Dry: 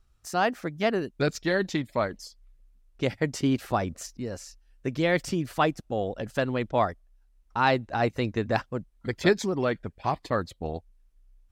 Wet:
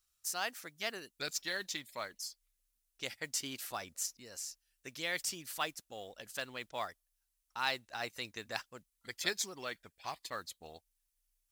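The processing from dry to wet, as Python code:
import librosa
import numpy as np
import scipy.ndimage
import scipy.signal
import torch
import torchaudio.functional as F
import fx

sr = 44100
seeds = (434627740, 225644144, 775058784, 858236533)

y = scipy.signal.lfilter([1.0, -0.97], [1.0], x)
y = fx.mod_noise(y, sr, seeds[0], snr_db=25)
y = F.gain(torch.from_numpy(y), 3.5).numpy()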